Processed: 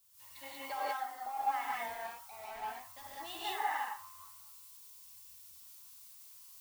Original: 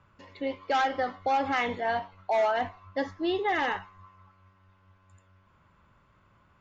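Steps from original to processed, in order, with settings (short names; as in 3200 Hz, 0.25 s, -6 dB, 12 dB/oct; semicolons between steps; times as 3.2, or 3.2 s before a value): resonant low shelf 590 Hz -12 dB, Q 3; compressor 5:1, threshold -38 dBFS, peak gain reduction 19 dB; added noise blue -55 dBFS; 0.75–1.29 notch comb 590 Hz; 1.87–3.3 hard clip -39 dBFS, distortion -13 dB; non-linear reverb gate 0.22 s rising, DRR -4.5 dB; three-band expander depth 100%; gain -4.5 dB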